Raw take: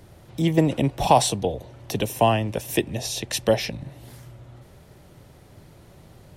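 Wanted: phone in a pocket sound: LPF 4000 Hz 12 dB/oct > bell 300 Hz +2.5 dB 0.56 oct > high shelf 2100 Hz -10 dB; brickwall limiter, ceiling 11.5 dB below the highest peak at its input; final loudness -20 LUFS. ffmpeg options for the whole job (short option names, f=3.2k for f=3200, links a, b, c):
-af "alimiter=limit=-14.5dB:level=0:latency=1,lowpass=4k,equalizer=f=300:t=o:w=0.56:g=2.5,highshelf=f=2.1k:g=-10,volume=8dB"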